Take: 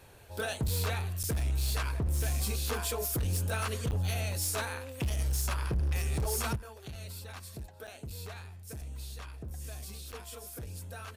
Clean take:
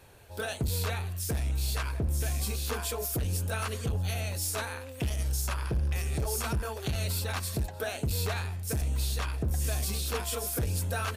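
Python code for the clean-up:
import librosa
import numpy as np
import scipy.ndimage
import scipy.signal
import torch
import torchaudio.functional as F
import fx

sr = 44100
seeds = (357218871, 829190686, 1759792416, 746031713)

y = fx.fix_declip(x, sr, threshold_db=-25.5)
y = fx.fix_interpolate(y, sr, at_s=(1.23, 3.91, 7.87, 10.12), length_ms=7.7)
y = fx.fix_level(y, sr, at_s=6.56, step_db=12.0)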